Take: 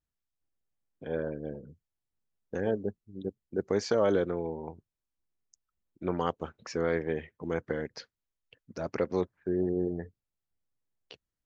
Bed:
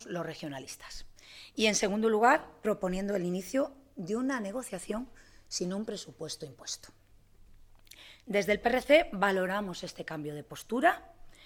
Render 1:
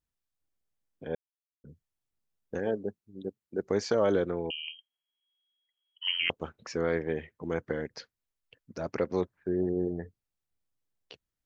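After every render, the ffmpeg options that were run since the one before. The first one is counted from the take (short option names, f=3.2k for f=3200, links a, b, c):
-filter_complex "[0:a]asettb=1/sr,asplit=3[a][b][c];[a]atrim=end=2.594[d];[b]atrim=start=2.59:end=3.64,asetpts=PTS-STARTPTS,afade=t=in:d=0.004:c=qsin,afade=t=out:st=1.046:d=0.004:c=qsin,highpass=f=190:p=1[e];[c]atrim=start=3.636[f];[d][e]acrossfade=d=0.004:c1=hsin:c2=qsin[g];[g][f]acrossfade=d=0.004:c1=qsin:c2=hsin,asettb=1/sr,asplit=3[h][i][j];[h]atrim=end=4.504[k];[i]atrim=start=4.5:end=6.3,asetpts=PTS-STARTPTS,afade=t=in:d=0.004:c=qsin,afade=t=out:st=1.796:d=0.004:c=qsin,lowpass=f=2.8k:t=q:w=0.5098,lowpass=f=2.8k:t=q:w=0.6013,lowpass=f=2.8k:t=q:w=0.9,lowpass=f=2.8k:t=q:w=2.563,afreqshift=-3300[l];[j]atrim=start=6.296[m];[k][l]acrossfade=d=0.004:c1=hsin:c2=qsin[n];[n][m]acrossfade=d=0.004:c1=qsin:c2=hsin,asplit=3[o][p][q];[o]atrim=end=1.15,asetpts=PTS-STARTPTS,afade=t=out:st=1.146:d=0.004:c=hsin[r];[p]atrim=start=1.15:end=1.64,asetpts=PTS-STARTPTS,volume=0[s];[q]atrim=start=1.64,asetpts=PTS-STARTPTS,afade=t=in:d=0.004:c=hsin[t];[r][s][t]concat=n=3:v=0:a=1"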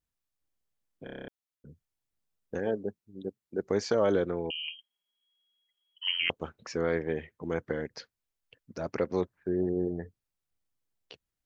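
-filter_complex "[0:a]asettb=1/sr,asplit=3[a][b][c];[a]atrim=end=4.554[d];[b]atrim=start=4.55:end=6.04,asetpts=PTS-STARTPTS,afade=t=in:d=0.004:c=qsin,afade=t=out:st=1.486:d=0.004:c=qsin,aecho=1:1:4.9:0.81,atrim=end_sample=65709[e];[c]atrim=start=6.036[f];[d][e]acrossfade=d=0.004:c1=hsin:c2=qsin[g];[g][f]acrossfade=d=0.004:c1=qsin:c2=hsin,asplit=9[h][i][j][k][l][m][n][o][p];[h]atrim=end=1.072[q];[i]atrim=start=1.038:end=1.072[r];[j]atrim=start=1.038:end=1.072[s];[k]atrim=start=1.038:end=1.072[t];[l]atrim=start=1.038:end=1.072[u];[m]atrim=start=1.038:end=1.072[v];[n]atrim=start=1.038:end=1.072[w];[o]atrim=start=1.038:end=1.072[x];[p]atrim=start=1.278[y];[q][r]acrossfade=d=0.004:c1=hsin:c2=hsin[z];[z][s]acrossfade=d=0.004:c1=hsin:c2=hsin[aa];[aa][t]acrossfade=d=0.004:c1=hsin:c2=hsin[ab];[ab][u]acrossfade=d=0.004:c1=hsin:c2=hsin[ac];[ac][v]acrossfade=d=0.004:c1=hsin:c2=hsin[ad];[ad][w]acrossfade=d=0.004:c1=hsin:c2=hsin[ae];[ae][x]acrossfade=d=0.004:c1=hsin:c2=hsin[af];[af][y]acrossfade=d=0.004:c1=hsin:c2=hsin"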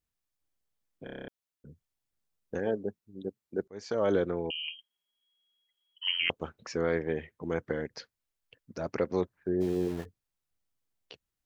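-filter_complex "[0:a]asplit=3[a][b][c];[a]afade=t=out:st=9.6:d=0.02[d];[b]aeval=exprs='val(0)*gte(abs(val(0)),0.00891)':c=same,afade=t=in:st=9.6:d=0.02,afade=t=out:st=10.04:d=0.02[e];[c]afade=t=in:st=10.04:d=0.02[f];[d][e][f]amix=inputs=3:normalize=0,asplit=2[g][h];[g]atrim=end=3.68,asetpts=PTS-STARTPTS,afade=t=out:st=3.676:d=0.004:c=hsin[i];[h]atrim=start=3.68,asetpts=PTS-STARTPTS,afade=t=in:d=0.46[j];[i][j]concat=n=2:v=0:a=1"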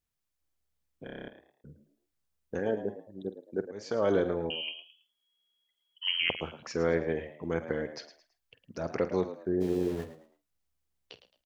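-filter_complex "[0:a]asplit=2[a][b];[b]adelay=48,volume=-14dB[c];[a][c]amix=inputs=2:normalize=0,asplit=4[d][e][f][g];[e]adelay=109,afreqshift=69,volume=-12.5dB[h];[f]adelay=218,afreqshift=138,volume=-22.7dB[i];[g]adelay=327,afreqshift=207,volume=-32.8dB[j];[d][h][i][j]amix=inputs=4:normalize=0"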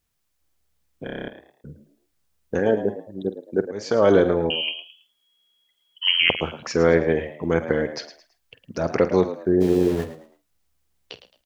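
-af "volume=10.5dB"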